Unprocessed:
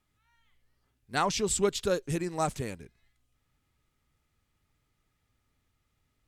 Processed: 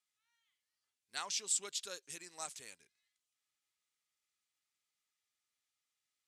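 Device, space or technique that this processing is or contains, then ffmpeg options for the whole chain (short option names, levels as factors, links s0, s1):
piezo pickup straight into a mixer: -af "lowpass=7500,aderivative"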